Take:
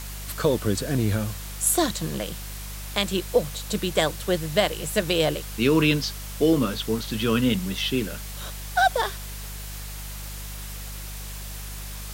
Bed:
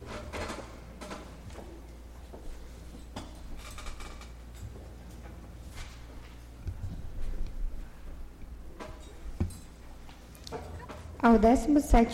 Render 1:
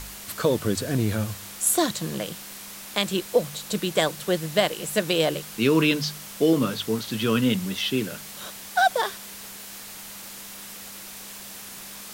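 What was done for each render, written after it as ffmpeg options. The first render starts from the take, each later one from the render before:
-af "bandreject=f=50:t=h:w=4,bandreject=f=100:t=h:w=4,bandreject=f=150:t=h:w=4"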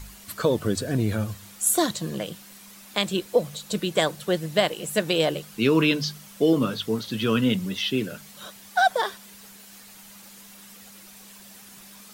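-af "afftdn=nr=9:nf=-40"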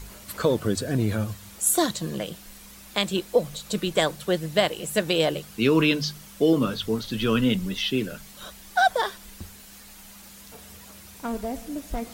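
-filter_complex "[1:a]volume=-9.5dB[a];[0:a][a]amix=inputs=2:normalize=0"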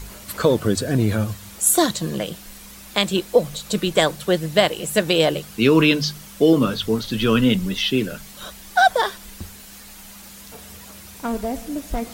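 -af "volume=5dB"

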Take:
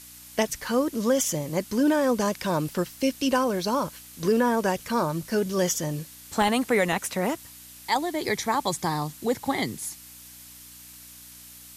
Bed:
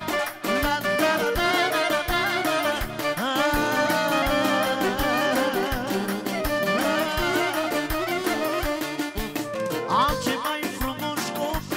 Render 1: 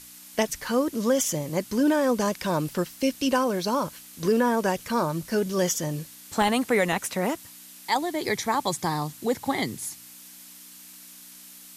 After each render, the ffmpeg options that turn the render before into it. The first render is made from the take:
-af "bandreject=f=60:t=h:w=4,bandreject=f=120:t=h:w=4"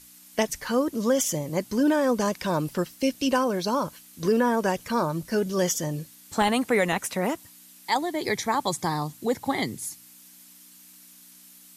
-af "afftdn=nr=6:nf=-47"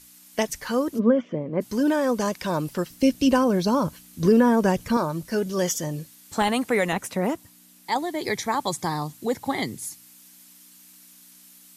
-filter_complex "[0:a]asplit=3[a][b][c];[a]afade=t=out:st=0.98:d=0.02[d];[b]highpass=130,equalizer=f=230:t=q:w=4:g=9,equalizer=f=440:t=q:w=4:g=6,equalizer=f=840:t=q:w=4:g=-6,equalizer=f=1.9k:t=q:w=4:g=-5,lowpass=f=2.2k:w=0.5412,lowpass=f=2.2k:w=1.3066,afade=t=in:st=0.98:d=0.02,afade=t=out:st=1.6:d=0.02[e];[c]afade=t=in:st=1.6:d=0.02[f];[d][e][f]amix=inputs=3:normalize=0,asettb=1/sr,asplit=3[g][h][i];[g]atrim=end=2.904[j];[h]atrim=start=2.9:end=4.97,asetpts=PTS-STARTPTS,afade=t=in:d=0.004:c=qsin,afade=t=out:st=2.066:d=0.004:c=qsin,lowshelf=f=290:g=11.5[k];[i]atrim=start=4.966[l];[j][k]acrossfade=d=0.004:c1=hsin:c2=qsin[m];[m][l]acrossfade=d=0.004:c1=qsin:c2=hsin,asettb=1/sr,asplit=3[n][o][p];[n]atrim=end=6.934[q];[o]atrim=start=6.93:end=7.98,asetpts=PTS-STARTPTS,afade=t=in:d=0.004:c=qsin,afade=t=out:st=1.046:d=0.004:c=qsin,tiltshelf=f=790:g=3.5[r];[p]atrim=start=7.976[s];[q][r]acrossfade=d=0.004:c1=hsin:c2=qsin[t];[t][s]acrossfade=d=0.004:c1=qsin:c2=hsin"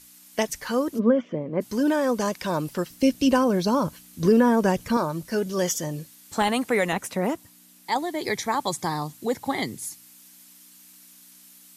-af "lowshelf=f=150:g=-3"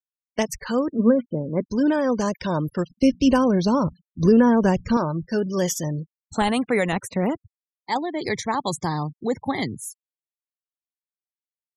-af "afftfilt=real='re*gte(hypot(re,im),0.0158)':imag='im*gte(hypot(re,im),0.0158)':win_size=1024:overlap=0.75,lowshelf=f=150:g=11.5"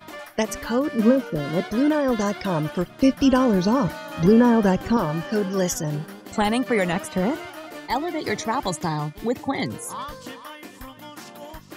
-filter_complex "[1:a]volume=-12.5dB[a];[0:a][a]amix=inputs=2:normalize=0"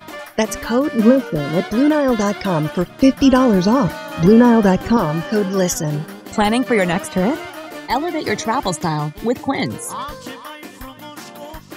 -af "volume=5.5dB,alimiter=limit=-1dB:level=0:latency=1"

